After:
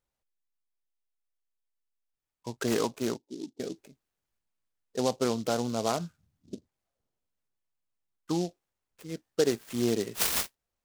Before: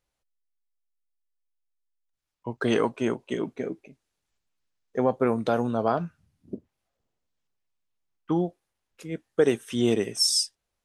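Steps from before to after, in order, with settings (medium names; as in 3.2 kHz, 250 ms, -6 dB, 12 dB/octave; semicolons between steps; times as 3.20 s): 3.17–3.60 s: cascade formant filter u; delay time shaken by noise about 4.7 kHz, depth 0.071 ms; trim -4.5 dB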